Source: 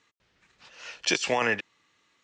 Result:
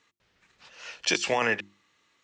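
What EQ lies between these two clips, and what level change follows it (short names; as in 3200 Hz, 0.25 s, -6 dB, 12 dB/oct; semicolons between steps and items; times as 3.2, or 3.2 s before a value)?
notches 50/100/150/200/250/300/350 Hz; 0.0 dB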